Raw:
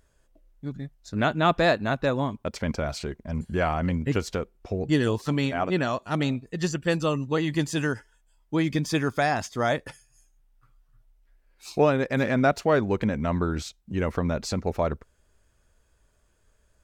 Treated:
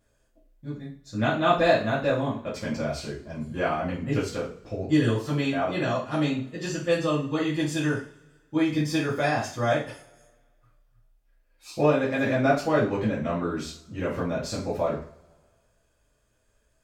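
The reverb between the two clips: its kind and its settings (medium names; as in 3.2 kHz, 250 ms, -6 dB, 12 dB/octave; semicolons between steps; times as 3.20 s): two-slope reverb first 0.4 s, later 1.7 s, from -25 dB, DRR -9 dB; trim -10 dB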